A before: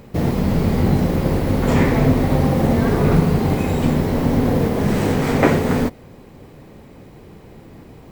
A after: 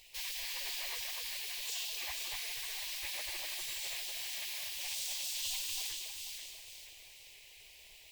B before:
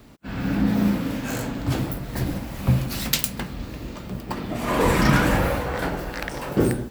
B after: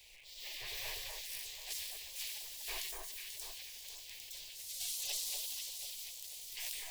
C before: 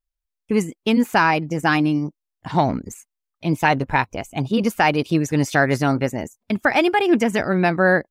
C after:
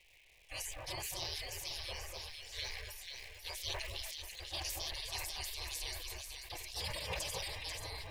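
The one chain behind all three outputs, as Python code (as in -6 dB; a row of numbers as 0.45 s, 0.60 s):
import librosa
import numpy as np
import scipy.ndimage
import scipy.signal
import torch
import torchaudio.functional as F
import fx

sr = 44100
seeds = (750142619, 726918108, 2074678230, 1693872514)

p1 = fx.dmg_noise_band(x, sr, seeds[0], low_hz=89.0, high_hz=1100.0, level_db=-31.0)
p2 = fx.hum_notches(p1, sr, base_hz=60, count=9)
p3 = fx.spec_gate(p2, sr, threshold_db=-30, keep='weak')
p4 = fx.dmg_crackle(p3, sr, seeds[1], per_s=300.0, level_db=-50.0)
p5 = fx.high_shelf(p4, sr, hz=9900.0, db=-5.0)
p6 = p5 + fx.echo_alternate(p5, sr, ms=244, hz=1600.0, feedback_pct=60, wet_db=-2, dry=0)
p7 = fx.rider(p6, sr, range_db=3, speed_s=2.0)
p8 = np.clip(10.0 ** (32.0 / 20.0) * p7, -1.0, 1.0) / 10.0 ** (32.0 / 20.0)
p9 = p7 + (p8 * 10.0 ** (-5.5 / 20.0))
p10 = fx.low_shelf(p9, sr, hz=74.0, db=10.5)
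p11 = fx.fixed_phaser(p10, sr, hz=570.0, stages=4)
p12 = fx.sustainer(p11, sr, db_per_s=25.0)
y = p12 * 10.0 ** (-3.0 / 20.0)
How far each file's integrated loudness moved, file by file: -19.5 LU, -17.0 LU, -21.5 LU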